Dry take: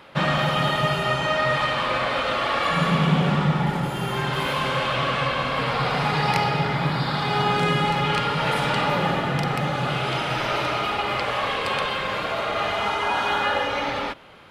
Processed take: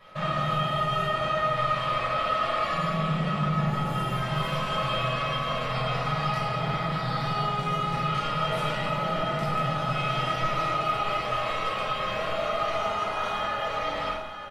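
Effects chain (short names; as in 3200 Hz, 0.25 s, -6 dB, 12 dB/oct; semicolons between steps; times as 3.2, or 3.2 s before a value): limiter -18 dBFS, peak gain reduction 11 dB; resonator 640 Hz, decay 0.2 s, harmonics all, mix 90%; echo 0.896 s -9.5 dB; shoebox room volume 690 m³, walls furnished, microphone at 5.8 m; gain +4 dB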